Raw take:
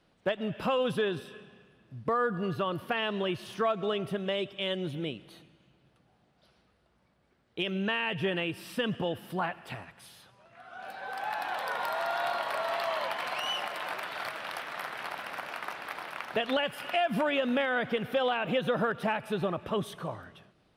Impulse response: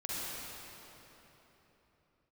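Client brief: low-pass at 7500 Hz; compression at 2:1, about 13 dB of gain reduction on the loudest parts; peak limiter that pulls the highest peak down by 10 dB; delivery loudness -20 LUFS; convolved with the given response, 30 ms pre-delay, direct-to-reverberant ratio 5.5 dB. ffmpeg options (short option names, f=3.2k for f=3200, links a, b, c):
-filter_complex "[0:a]lowpass=7.5k,acompressor=threshold=-49dB:ratio=2,alimiter=level_in=14dB:limit=-24dB:level=0:latency=1,volume=-14dB,asplit=2[a][b];[1:a]atrim=start_sample=2205,adelay=30[c];[b][c]afir=irnorm=-1:irlink=0,volume=-9.5dB[d];[a][d]amix=inputs=2:normalize=0,volume=26.5dB"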